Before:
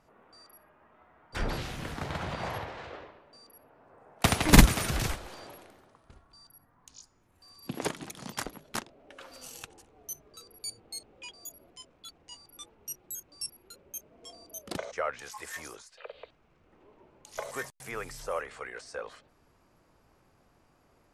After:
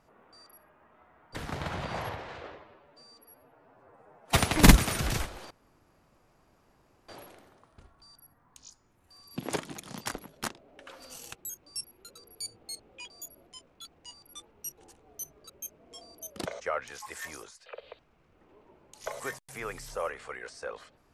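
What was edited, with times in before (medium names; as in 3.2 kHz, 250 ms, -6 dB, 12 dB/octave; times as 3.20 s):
1.36–1.85 s: delete
3.07–4.26 s: stretch 1.5×
5.40 s: insert room tone 1.58 s
9.67–10.39 s: swap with 13.01–13.81 s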